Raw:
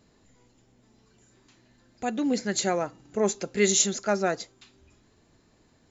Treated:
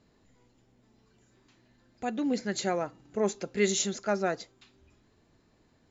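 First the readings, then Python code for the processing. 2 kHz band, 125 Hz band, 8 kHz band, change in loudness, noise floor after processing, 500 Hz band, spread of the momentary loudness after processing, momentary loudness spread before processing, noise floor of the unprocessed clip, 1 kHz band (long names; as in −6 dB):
−3.5 dB, −3.0 dB, can't be measured, −4.5 dB, −67 dBFS, −3.0 dB, 10 LU, 12 LU, −63 dBFS, −3.5 dB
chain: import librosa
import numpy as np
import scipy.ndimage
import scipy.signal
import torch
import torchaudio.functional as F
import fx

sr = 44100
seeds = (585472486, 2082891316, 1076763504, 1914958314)

y = fx.air_absorb(x, sr, metres=67.0)
y = F.gain(torch.from_numpy(y), -3.0).numpy()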